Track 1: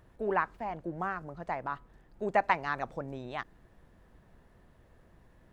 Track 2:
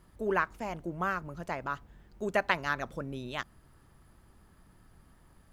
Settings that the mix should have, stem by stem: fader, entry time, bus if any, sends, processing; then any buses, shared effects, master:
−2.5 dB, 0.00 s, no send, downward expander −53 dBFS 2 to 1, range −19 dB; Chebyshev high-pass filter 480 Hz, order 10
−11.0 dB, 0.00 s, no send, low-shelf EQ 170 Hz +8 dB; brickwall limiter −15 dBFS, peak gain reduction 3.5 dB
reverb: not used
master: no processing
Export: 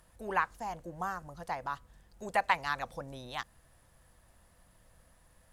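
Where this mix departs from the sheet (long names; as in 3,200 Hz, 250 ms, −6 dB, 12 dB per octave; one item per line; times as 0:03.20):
stem 1: missing downward expander −53 dBFS 2 to 1, range −19 dB
master: extra parametric band 9,700 Hz +14 dB 1.9 octaves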